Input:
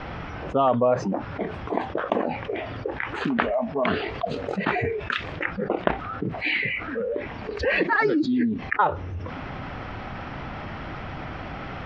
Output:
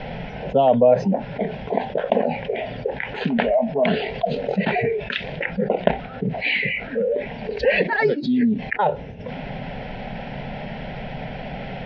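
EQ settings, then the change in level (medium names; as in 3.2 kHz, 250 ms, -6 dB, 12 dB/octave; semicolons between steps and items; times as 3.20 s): distance through air 290 m; treble shelf 3.3 kHz +8.5 dB; static phaser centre 320 Hz, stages 6; +7.5 dB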